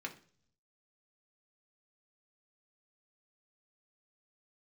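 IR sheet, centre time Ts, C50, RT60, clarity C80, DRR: 9 ms, 14.0 dB, 0.50 s, 19.0 dB, 1.0 dB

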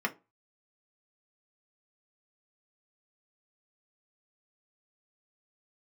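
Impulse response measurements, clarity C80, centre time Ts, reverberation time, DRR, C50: 28.0 dB, 6 ms, 0.25 s, 1.5 dB, 20.0 dB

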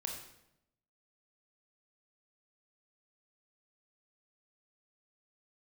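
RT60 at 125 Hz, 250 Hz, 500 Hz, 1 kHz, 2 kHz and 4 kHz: 1.0, 1.0, 0.90, 0.75, 0.75, 0.65 s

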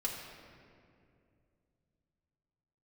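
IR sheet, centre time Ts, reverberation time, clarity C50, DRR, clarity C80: 74 ms, 2.4 s, 3.0 dB, -3.0 dB, 4.0 dB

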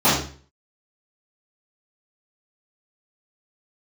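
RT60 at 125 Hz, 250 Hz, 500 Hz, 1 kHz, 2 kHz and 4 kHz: 0.55, 0.45, 0.45, 0.40, 0.40, 0.40 s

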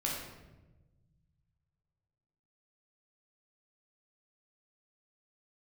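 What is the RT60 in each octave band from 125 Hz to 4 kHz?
2.8, 2.0, 1.3, 0.95, 0.85, 0.70 s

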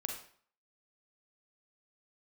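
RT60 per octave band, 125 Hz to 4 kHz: 0.50, 0.50, 0.50, 0.55, 0.50, 0.45 s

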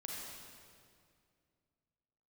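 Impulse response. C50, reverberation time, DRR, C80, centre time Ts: -2.0 dB, 2.3 s, -3.0 dB, 0.0 dB, 0.126 s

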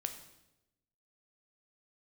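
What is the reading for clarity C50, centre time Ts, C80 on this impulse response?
9.5 dB, 14 ms, 12.0 dB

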